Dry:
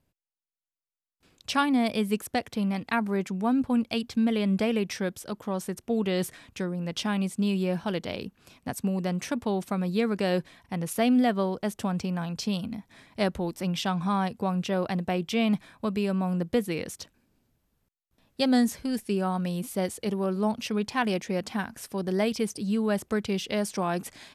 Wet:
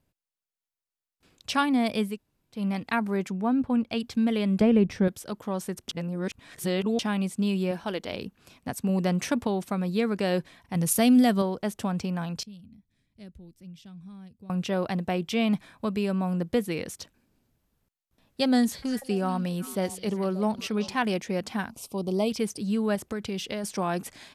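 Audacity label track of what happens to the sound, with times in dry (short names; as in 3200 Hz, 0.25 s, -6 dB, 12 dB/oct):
2.120000	2.580000	room tone, crossfade 0.16 s
3.320000	3.990000	high shelf 3200 Hz -> 5600 Hz -11 dB
4.610000	5.080000	tilt -3.5 dB/oct
5.890000	6.990000	reverse
7.710000	8.130000	bell 140 Hz -12.5 dB
8.890000	9.470000	gain +3.5 dB
10.750000	11.420000	tone controls bass +7 dB, treble +11 dB
12.430000	14.500000	passive tone stack bass-middle-treble 10-0-1
18.440000	20.960000	delay with a stepping band-pass 0.192 s, band-pass from 4400 Hz, each repeat -1.4 oct, level -7.5 dB
21.700000	22.300000	Butterworth band-stop 1700 Hz, Q 1.2
22.950000	23.640000	compressor, threshold -27 dBFS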